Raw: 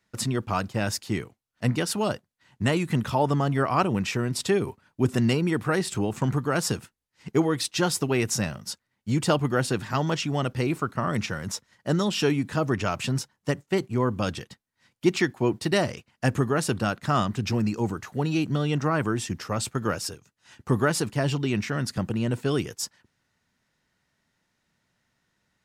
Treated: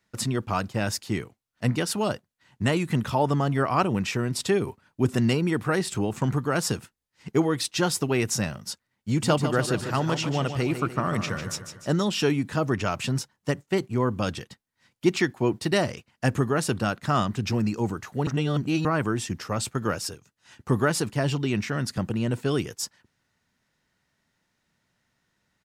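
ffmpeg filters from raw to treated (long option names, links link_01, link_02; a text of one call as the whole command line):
ffmpeg -i in.wav -filter_complex "[0:a]asplit=3[link_01][link_02][link_03];[link_01]afade=type=out:start_time=9.16:duration=0.02[link_04];[link_02]aecho=1:1:149|298|447|596|745|894:0.355|0.174|0.0852|0.0417|0.0205|0.01,afade=type=in:start_time=9.16:duration=0.02,afade=type=out:start_time=11.89:duration=0.02[link_05];[link_03]afade=type=in:start_time=11.89:duration=0.02[link_06];[link_04][link_05][link_06]amix=inputs=3:normalize=0,asplit=3[link_07][link_08][link_09];[link_07]atrim=end=18.272[link_10];[link_08]atrim=start=18.268:end=18.852,asetpts=PTS-STARTPTS,areverse[link_11];[link_09]atrim=start=18.848[link_12];[link_10][link_11]acrossfade=duration=0.004:curve1=hsin:curve2=hsin[link_13];[link_13][link_12]acrossfade=duration=0.004:curve1=hsin:curve2=hsin" out.wav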